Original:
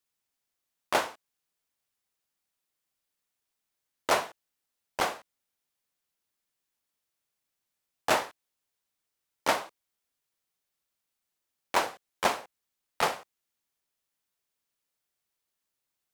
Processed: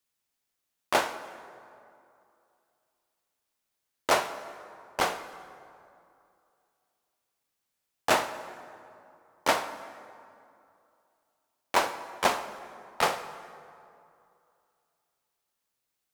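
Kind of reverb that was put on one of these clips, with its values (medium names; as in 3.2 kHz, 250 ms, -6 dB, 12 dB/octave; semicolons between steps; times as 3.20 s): plate-style reverb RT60 2.6 s, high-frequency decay 0.55×, DRR 10.5 dB; trim +1.5 dB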